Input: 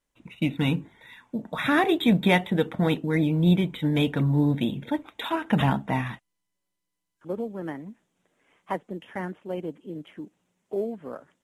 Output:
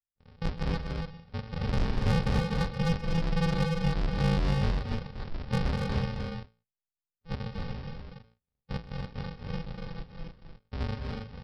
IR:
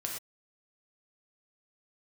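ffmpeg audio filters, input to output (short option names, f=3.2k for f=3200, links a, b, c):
-filter_complex "[0:a]lowpass=f=3.2k:w=0.5412,lowpass=f=3.2k:w=1.3066,bandreject=f=55.99:t=h:w=4,bandreject=f=111.98:t=h:w=4,bandreject=f=167.97:t=h:w=4,bandreject=f=223.96:t=h:w=4,bandreject=f=279.95:t=h:w=4,bandreject=f=335.94:t=h:w=4,bandreject=f=391.93:t=h:w=4,bandreject=f=447.92:t=h:w=4,bandreject=f=503.91:t=h:w=4,bandreject=f=559.9:t=h:w=4,agate=range=-21dB:threshold=-55dB:ratio=16:detection=peak,flanger=delay=22.5:depth=3.8:speed=0.95,aresample=11025,acrusher=samples=33:mix=1:aa=0.000001,aresample=44100,asoftclip=type=tanh:threshold=-21.5dB,asplit=2[a][b];[b]aecho=0:1:129|208|241|284:0.158|0.126|0.447|0.562[c];[a][c]amix=inputs=2:normalize=0"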